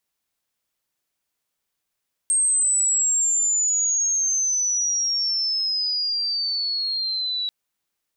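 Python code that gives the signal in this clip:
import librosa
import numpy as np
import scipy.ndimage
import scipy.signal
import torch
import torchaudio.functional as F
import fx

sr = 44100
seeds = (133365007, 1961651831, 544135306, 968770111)

y = fx.chirp(sr, length_s=5.19, from_hz=8500.0, to_hz=3900.0, law='logarithmic', from_db=-16.5, to_db=-23.0)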